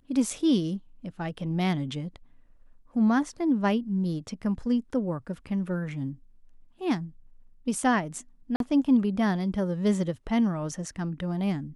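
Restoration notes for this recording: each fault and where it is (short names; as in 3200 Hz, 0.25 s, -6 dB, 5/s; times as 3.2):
8.56–8.6 gap 42 ms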